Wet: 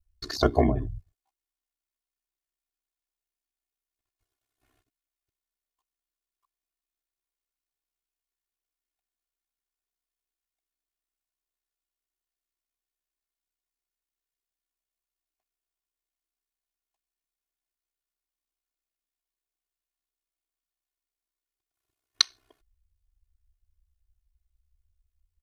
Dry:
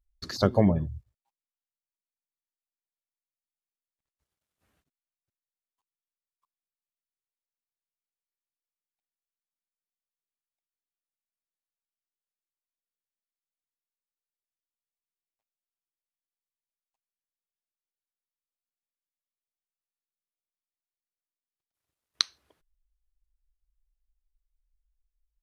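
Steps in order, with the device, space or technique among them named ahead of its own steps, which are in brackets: ring-modulated robot voice (ring modulator 32 Hz; comb 2.8 ms, depth 100%); trim +2 dB

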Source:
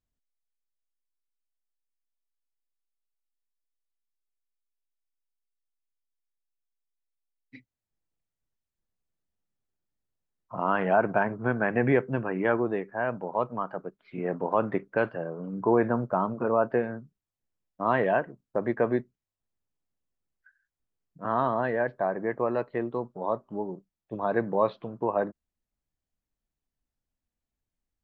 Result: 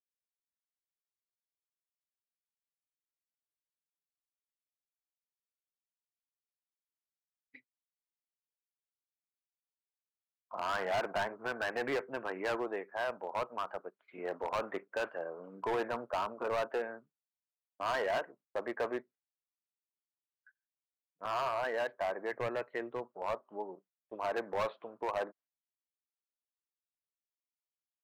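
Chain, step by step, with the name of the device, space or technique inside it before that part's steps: walkie-talkie (band-pass 530–2700 Hz; hard clipper -26.5 dBFS, distortion -7 dB; gate -59 dBFS, range -21 dB); 22.31–23.03 s: graphic EQ 125/1000/2000 Hz +8/-5/+5 dB; trim -2.5 dB

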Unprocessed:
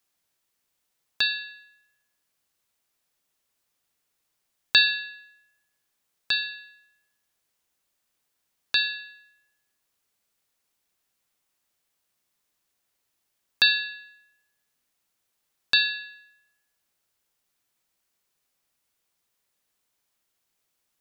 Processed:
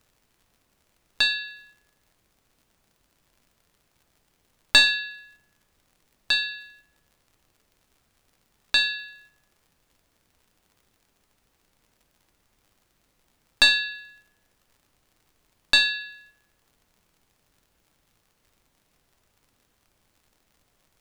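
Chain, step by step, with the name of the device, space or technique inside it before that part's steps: gate -57 dBFS, range -7 dB; record under a worn stylus (tracing distortion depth 0.025 ms; crackle; pink noise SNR 38 dB); trim +2.5 dB

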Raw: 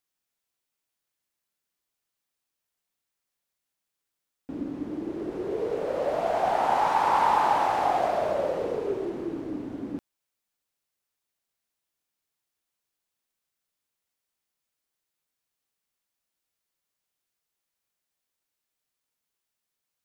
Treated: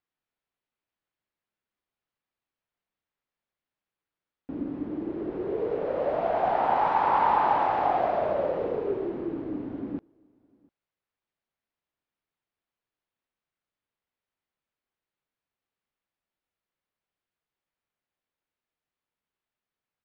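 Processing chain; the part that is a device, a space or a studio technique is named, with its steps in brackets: shout across a valley (distance through air 320 m; echo from a far wall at 120 m, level -29 dB); trim +1 dB

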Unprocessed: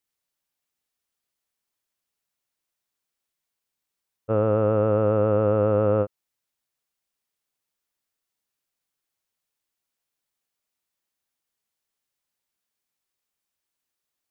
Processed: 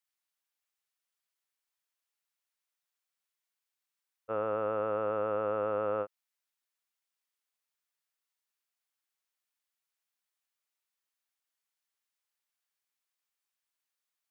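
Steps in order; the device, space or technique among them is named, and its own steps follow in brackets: filter by subtraction (in parallel: low-pass 1.4 kHz 12 dB/octave + polarity flip); on the sum: trim -5 dB

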